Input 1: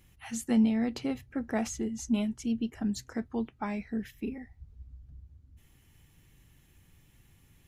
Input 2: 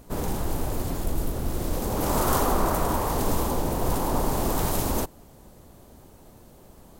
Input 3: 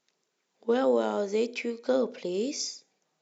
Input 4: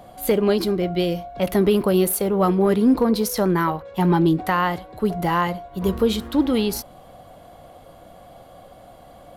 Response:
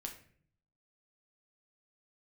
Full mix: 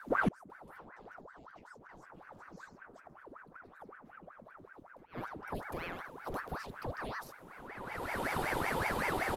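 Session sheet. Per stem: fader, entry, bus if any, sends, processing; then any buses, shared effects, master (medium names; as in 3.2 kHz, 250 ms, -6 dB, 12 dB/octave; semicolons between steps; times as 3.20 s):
-0.5 dB, 0.00 s, no send, peak limiter -26.5 dBFS, peak gain reduction 11 dB
-7.0 dB, 0.00 s, no send, low-pass 1.1 kHz 6 dB/octave
-3.5 dB, 0.00 s, no send, none
-6.5 dB, 0.50 s, no send, bass shelf 150 Hz -11 dB; three bands compressed up and down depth 100%; auto duck -13 dB, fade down 1.85 s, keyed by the first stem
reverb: none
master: bass shelf 160 Hz +11 dB; inverted gate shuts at -18 dBFS, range -29 dB; ring modulator with a swept carrier 870 Hz, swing 80%, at 5.3 Hz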